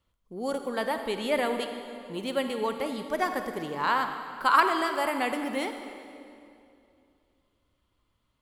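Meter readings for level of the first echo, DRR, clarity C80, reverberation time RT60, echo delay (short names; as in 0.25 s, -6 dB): none, 6.5 dB, 8.0 dB, 2.6 s, none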